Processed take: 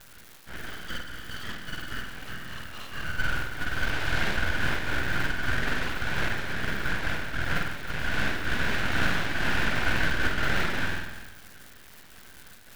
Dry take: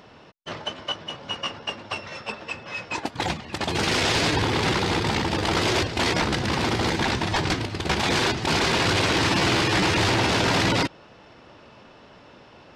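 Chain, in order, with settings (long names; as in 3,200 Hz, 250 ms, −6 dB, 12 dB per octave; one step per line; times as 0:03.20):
partials spread apart or drawn together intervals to 90%
four-pole ladder band-pass 770 Hz, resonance 80%
surface crackle 540 per second −50 dBFS
spectral tilt +3 dB per octave
convolution reverb RT60 1.2 s, pre-delay 47 ms, DRR −5.5 dB
full-wave rectification
amplitude modulation by smooth noise, depth 55%
level +7.5 dB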